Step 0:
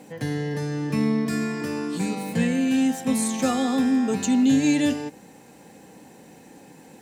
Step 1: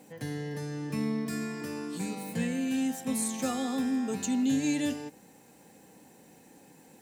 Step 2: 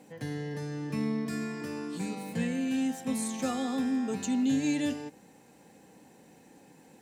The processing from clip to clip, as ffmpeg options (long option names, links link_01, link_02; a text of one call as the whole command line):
ffmpeg -i in.wav -af "highshelf=frequency=8800:gain=9,volume=-8.5dB" out.wav
ffmpeg -i in.wav -af "highshelf=frequency=9400:gain=-10" out.wav